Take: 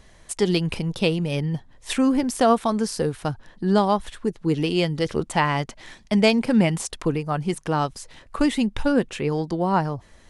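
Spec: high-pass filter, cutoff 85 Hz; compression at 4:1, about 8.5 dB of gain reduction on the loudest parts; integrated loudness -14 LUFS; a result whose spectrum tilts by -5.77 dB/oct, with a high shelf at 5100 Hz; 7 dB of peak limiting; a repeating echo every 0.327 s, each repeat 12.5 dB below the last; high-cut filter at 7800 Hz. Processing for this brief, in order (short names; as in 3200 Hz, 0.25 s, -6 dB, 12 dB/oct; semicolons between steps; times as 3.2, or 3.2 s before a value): HPF 85 Hz; LPF 7800 Hz; high shelf 5100 Hz -5 dB; compressor 4:1, threshold -24 dBFS; limiter -19.5 dBFS; feedback echo 0.327 s, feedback 24%, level -12.5 dB; gain +16 dB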